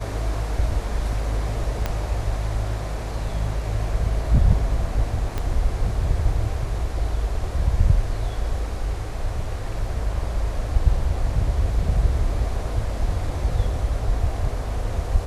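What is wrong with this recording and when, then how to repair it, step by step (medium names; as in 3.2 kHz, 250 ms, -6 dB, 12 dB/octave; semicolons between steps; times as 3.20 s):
1.86 s: pop -10 dBFS
5.38 s: pop -13 dBFS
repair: de-click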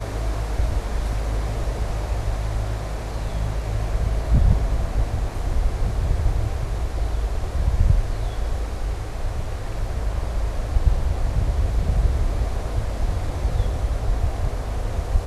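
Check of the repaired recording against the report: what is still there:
1.86 s: pop
5.38 s: pop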